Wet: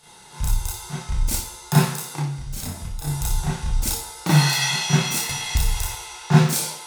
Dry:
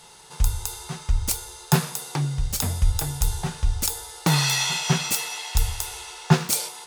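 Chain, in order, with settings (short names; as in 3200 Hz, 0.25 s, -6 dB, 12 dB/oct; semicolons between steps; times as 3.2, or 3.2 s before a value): 2.03–3.04 compressor 3:1, threshold -30 dBFS, peak gain reduction 12 dB; reverb RT60 0.55 s, pre-delay 31 ms, DRR -8 dB; 5.29–5.95 three-band squash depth 100%; gain -6.5 dB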